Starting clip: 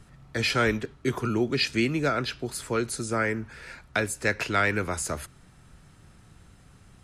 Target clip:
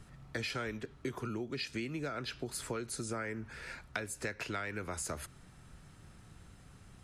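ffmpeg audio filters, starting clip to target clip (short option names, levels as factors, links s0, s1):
-af "acompressor=threshold=0.0251:ratio=12,volume=0.75"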